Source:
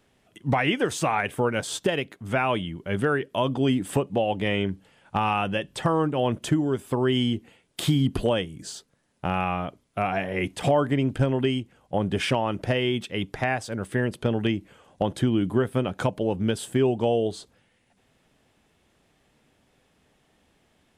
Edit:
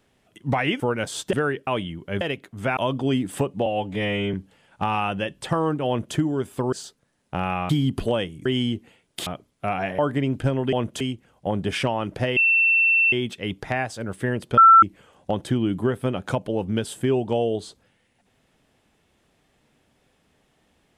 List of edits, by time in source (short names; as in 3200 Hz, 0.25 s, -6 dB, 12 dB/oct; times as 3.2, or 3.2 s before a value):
0.8–1.36 cut
1.89–2.45 swap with 2.99–3.33
4.22–4.67 stretch 1.5×
6.21–6.49 copy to 11.48
7.06–7.87 swap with 8.63–9.6
10.32–10.74 cut
12.84 add tone 2690 Hz -15 dBFS 0.76 s
14.29–14.54 bleep 1340 Hz -7.5 dBFS